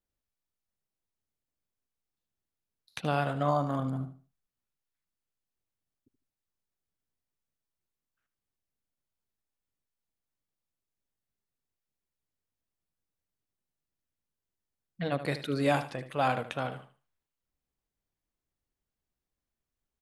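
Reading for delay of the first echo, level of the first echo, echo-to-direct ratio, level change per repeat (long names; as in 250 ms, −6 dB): 76 ms, −12.0 dB, −11.5 dB, −12.0 dB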